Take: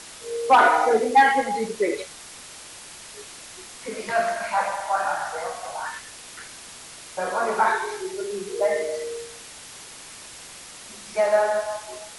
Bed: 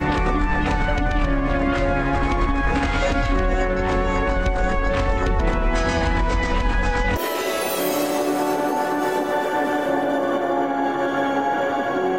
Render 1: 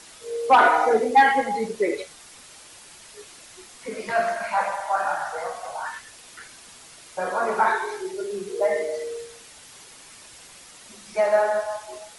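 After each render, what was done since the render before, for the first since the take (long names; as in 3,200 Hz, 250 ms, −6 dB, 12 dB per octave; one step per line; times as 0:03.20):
broadband denoise 6 dB, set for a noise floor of −42 dBFS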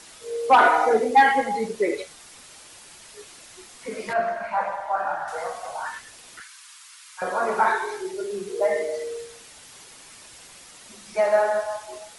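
0:04.13–0:05.28: low-pass filter 1,400 Hz 6 dB per octave
0:06.40–0:07.22: Butterworth high-pass 1,000 Hz 48 dB per octave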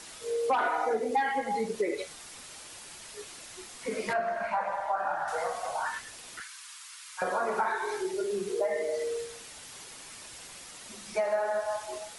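downward compressor 4 to 1, threshold −27 dBFS, peak gain reduction 14 dB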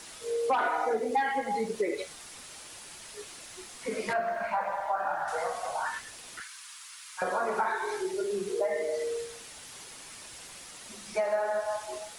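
bit reduction 11 bits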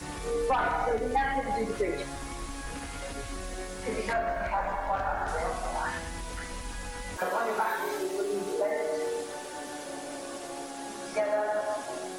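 mix in bed −18.5 dB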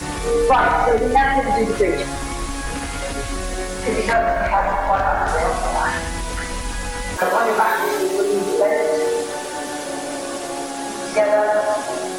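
level +12 dB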